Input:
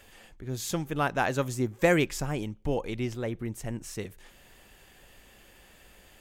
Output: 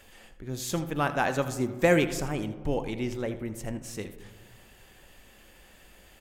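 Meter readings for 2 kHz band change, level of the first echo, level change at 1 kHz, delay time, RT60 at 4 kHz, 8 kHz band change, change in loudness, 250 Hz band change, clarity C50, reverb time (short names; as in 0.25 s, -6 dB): +0.5 dB, -14.5 dB, +0.5 dB, 81 ms, 0.85 s, 0.0 dB, +0.5 dB, +1.0 dB, 11.0 dB, 1.5 s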